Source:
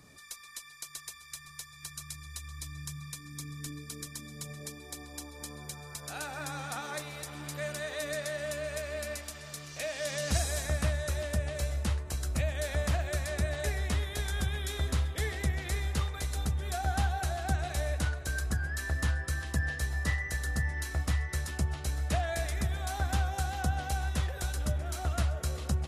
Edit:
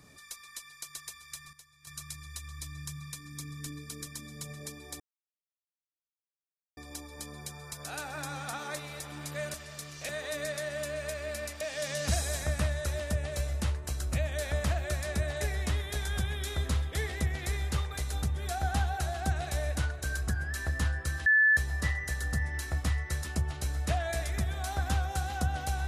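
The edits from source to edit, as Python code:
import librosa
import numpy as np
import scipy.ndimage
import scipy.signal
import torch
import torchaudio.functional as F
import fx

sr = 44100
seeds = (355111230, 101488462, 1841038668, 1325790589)

y = fx.edit(x, sr, fx.clip_gain(start_s=1.53, length_s=0.34, db=-12.0),
    fx.insert_silence(at_s=5.0, length_s=1.77),
    fx.move(start_s=9.29, length_s=0.55, to_s=7.77),
    fx.bleep(start_s=19.49, length_s=0.31, hz=1740.0, db=-19.0), tone=tone)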